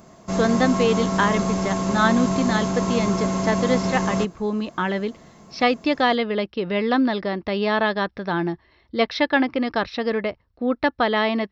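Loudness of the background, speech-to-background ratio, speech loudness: -24.0 LUFS, 1.0 dB, -23.0 LUFS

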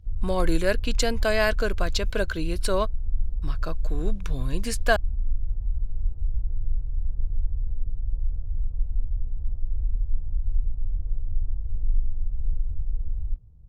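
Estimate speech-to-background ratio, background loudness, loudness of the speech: 4.5 dB, -32.5 LUFS, -28.0 LUFS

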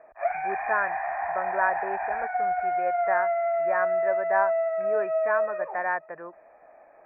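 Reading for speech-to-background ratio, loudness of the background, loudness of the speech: -3.0 dB, -27.5 LUFS, -30.5 LUFS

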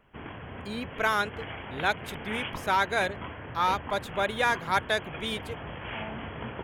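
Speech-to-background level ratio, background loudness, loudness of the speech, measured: 9.5 dB, -39.0 LUFS, -29.5 LUFS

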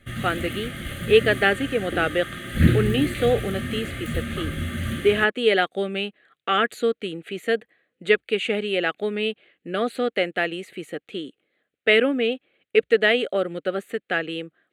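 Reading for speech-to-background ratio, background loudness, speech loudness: 4.5 dB, -28.0 LUFS, -23.5 LUFS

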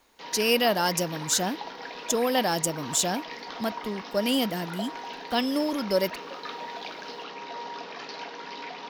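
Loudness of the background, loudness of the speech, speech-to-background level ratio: -38.0 LUFS, -27.0 LUFS, 11.0 dB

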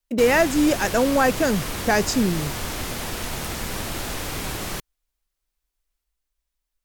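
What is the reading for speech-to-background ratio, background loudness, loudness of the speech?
8.0 dB, -29.0 LUFS, -21.0 LUFS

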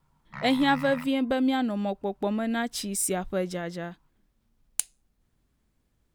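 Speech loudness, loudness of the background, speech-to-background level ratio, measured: -27.5 LUFS, -40.5 LUFS, 13.0 dB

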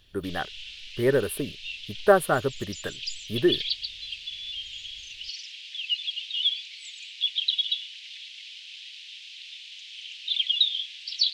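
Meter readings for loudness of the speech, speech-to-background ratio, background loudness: -26.5 LUFS, 3.5 dB, -30.0 LUFS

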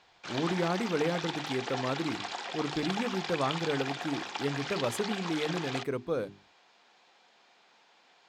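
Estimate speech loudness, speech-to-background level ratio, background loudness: -34.0 LUFS, 2.5 dB, -36.5 LUFS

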